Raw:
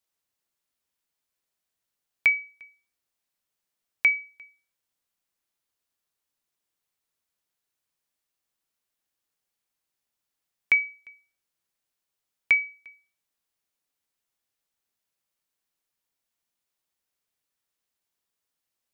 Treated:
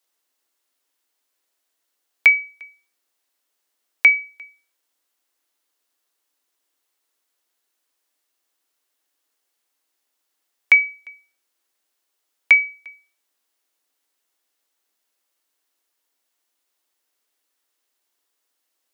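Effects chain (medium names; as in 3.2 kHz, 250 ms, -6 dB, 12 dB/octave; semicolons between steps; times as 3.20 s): steep high-pass 250 Hz 96 dB/octave; band-stop 2.4 kHz, Q 28; trim +8.5 dB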